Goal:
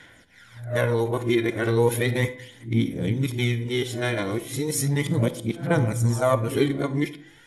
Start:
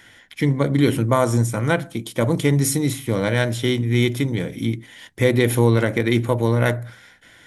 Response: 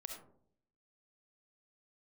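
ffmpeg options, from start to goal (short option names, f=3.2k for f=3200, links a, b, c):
-filter_complex "[0:a]areverse,aphaser=in_gain=1:out_gain=1:delay=2.9:decay=0.53:speed=0.36:type=sinusoidal,bandreject=f=167.6:t=h:w=4,bandreject=f=335.2:t=h:w=4,bandreject=f=502.8:t=h:w=4,bandreject=f=670.4:t=h:w=4,bandreject=f=838:t=h:w=4,bandreject=f=1.0056k:t=h:w=4,bandreject=f=1.1732k:t=h:w=4,bandreject=f=1.3408k:t=h:w=4,bandreject=f=1.5084k:t=h:w=4,bandreject=f=1.676k:t=h:w=4,bandreject=f=1.8436k:t=h:w=4,bandreject=f=2.0112k:t=h:w=4,bandreject=f=2.1788k:t=h:w=4,bandreject=f=2.3464k:t=h:w=4,bandreject=f=2.514k:t=h:w=4,bandreject=f=2.6816k:t=h:w=4,bandreject=f=2.8492k:t=h:w=4,bandreject=f=3.0168k:t=h:w=4,bandreject=f=3.1844k:t=h:w=4,bandreject=f=3.352k:t=h:w=4,bandreject=f=3.5196k:t=h:w=4,bandreject=f=3.6872k:t=h:w=4,bandreject=f=3.8548k:t=h:w=4,bandreject=f=4.0224k:t=h:w=4,bandreject=f=4.19k:t=h:w=4,bandreject=f=4.3576k:t=h:w=4,bandreject=f=4.5252k:t=h:w=4,bandreject=f=4.6928k:t=h:w=4,bandreject=f=4.8604k:t=h:w=4,bandreject=f=5.028k:t=h:w=4,bandreject=f=5.1956k:t=h:w=4,bandreject=f=5.3632k:t=h:w=4,asplit=2[a][b];[1:a]atrim=start_sample=2205,asetrate=57330,aresample=44100[c];[b][c]afir=irnorm=-1:irlink=0,volume=-1.5dB[d];[a][d]amix=inputs=2:normalize=0,volume=-8dB"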